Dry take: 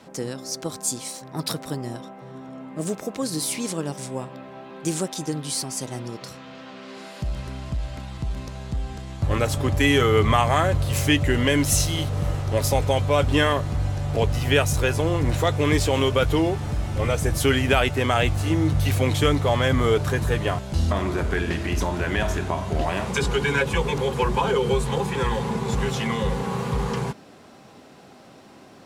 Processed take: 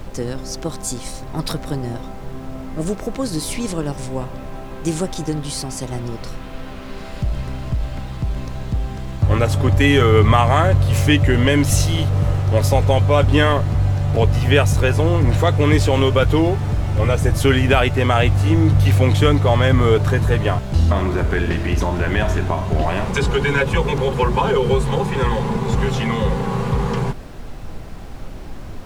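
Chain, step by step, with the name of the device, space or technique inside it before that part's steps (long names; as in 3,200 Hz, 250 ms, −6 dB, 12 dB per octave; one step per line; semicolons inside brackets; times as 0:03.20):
car interior (parametric band 100 Hz +4.5 dB 0.77 octaves; high-shelf EQ 4,500 Hz −7 dB; brown noise bed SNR 13 dB)
level +4.5 dB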